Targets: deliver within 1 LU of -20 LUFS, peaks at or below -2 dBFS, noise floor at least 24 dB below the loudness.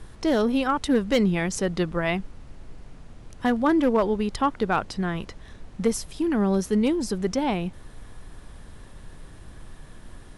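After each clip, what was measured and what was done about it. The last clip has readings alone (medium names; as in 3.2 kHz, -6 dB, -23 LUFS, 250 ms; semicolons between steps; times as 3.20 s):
clipped samples 0.2%; clipping level -13.5 dBFS; noise floor -46 dBFS; noise floor target -49 dBFS; loudness -24.5 LUFS; peak level -13.5 dBFS; loudness target -20.0 LUFS
-> clip repair -13.5 dBFS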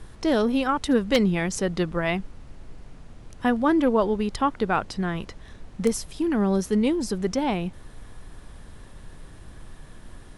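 clipped samples 0.0%; noise floor -46 dBFS; noise floor target -49 dBFS
-> noise print and reduce 6 dB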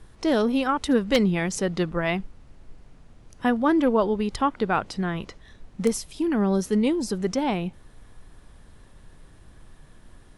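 noise floor -52 dBFS; loudness -24.5 LUFS; peak level -4.5 dBFS; loudness target -20.0 LUFS
-> trim +4.5 dB; peak limiter -2 dBFS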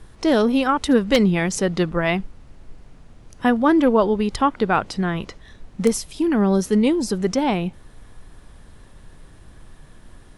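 loudness -20.0 LUFS; peak level -2.0 dBFS; noise floor -47 dBFS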